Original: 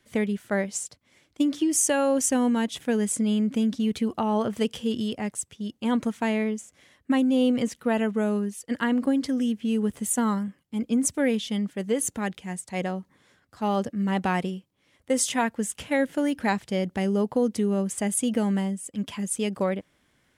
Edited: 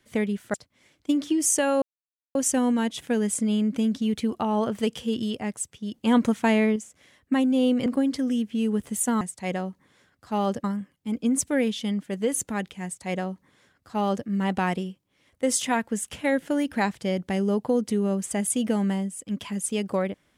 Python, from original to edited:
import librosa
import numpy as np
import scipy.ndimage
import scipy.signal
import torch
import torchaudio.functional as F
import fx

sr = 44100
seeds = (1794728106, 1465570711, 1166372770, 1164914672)

y = fx.edit(x, sr, fx.cut(start_s=0.54, length_s=0.31),
    fx.insert_silence(at_s=2.13, length_s=0.53),
    fx.clip_gain(start_s=5.72, length_s=0.82, db=4.5),
    fx.cut(start_s=7.64, length_s=1.32),
    fx.duplicate(start_s=12.51, length_s=1.43, to_s=10.31), tone=tone)